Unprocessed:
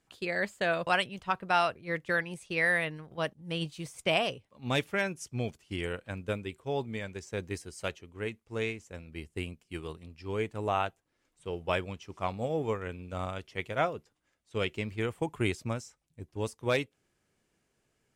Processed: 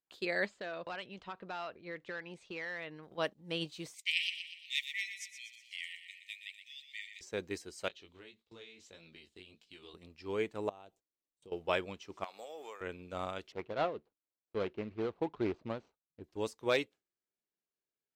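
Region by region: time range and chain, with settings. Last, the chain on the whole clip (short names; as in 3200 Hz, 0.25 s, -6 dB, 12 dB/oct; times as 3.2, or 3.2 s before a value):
0.46–3.03 compressor 2.5:1, threshold -39 dBFS + hard clip -32.5 dBFS + air absorption 95 m
3.94–7.21 brick-wall FIR high-pass 1800 Hz + feedback echo 0.121 s, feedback 52%, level -9 dB
7.88–9.94 bell 3700 Hz +14.5 dB 0.93 oct + compressor 12:1, threshold -43 dBFS + chorus 1.7 Hz, delay 17.5 ms, depth 5.4 ms
10.69–11.52 bell 1700 Hz -13 dB 1.6 oct + compressor 16:1, threshold -46 dBFS
12.24–12.81 HPF 660 Hz + high shelf 4600 Hz +11.5 dB + compressor 4:1, threshold -42 dBFS
13.52–16.24 median filter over 25 samples + LPF 3700 Hz
whole clip: resonant low shelf 180 Hz -8 dB, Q 1.5; gate with hold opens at -50 dBFS; thirty-one-band EQ 250 Hz -6 dB, 4000 Hz +5 dB, 10000 Hz -9 dB; gain -2.5 dB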